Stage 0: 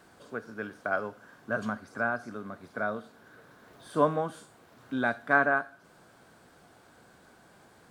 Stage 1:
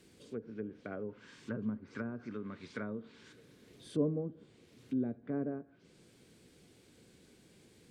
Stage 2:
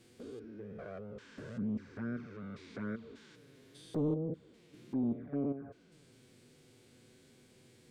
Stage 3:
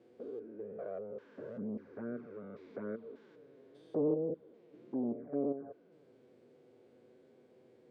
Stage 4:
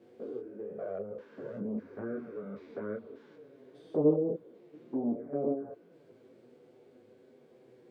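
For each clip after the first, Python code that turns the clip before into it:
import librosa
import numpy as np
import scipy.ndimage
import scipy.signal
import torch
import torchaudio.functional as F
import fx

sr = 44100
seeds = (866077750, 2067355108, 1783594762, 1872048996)

y1 = fx.band_shelf(x, sr, hz=1000.0, db=-16.0, octaves=1.7)
y1 = fx.env_lowpass_down(y1, sr, base_hz=520.0, full_db=-34.0)
y1 = fx.spec_box(y1, sr, start_s=1.09, length_s=2.24, low_hz=860.0, high_hz=9200.0, gain_db=10)
y1 = F.gain(torch.from_numpy(y1), -1.0).numpy()
y2 = fx.spec_steps(y1, sr, hold_ms=200)
y2 = 10.0 ** (-29.5 / 20.0) * np.tanh(y2 / 10.0 ** (-29.5 / 20.0))
y2 = fx.env_flanger(y2, sr, rest_ms=9.8, full_db=-35.5)
y2 = F.gain(torch.from_numpy(y2), 4.5).numpy()
y3 = fx.bandpass_q(y2, sr, hz=520.0, q=1.6)
y3 = F.gain(torch.from_numpy(y3), 6.0).numpy()
y4 = fx.detune_double(y3, sr, cents=17)
y4 = F.gain(torch.from_numpy(y4), 8.0).numpy()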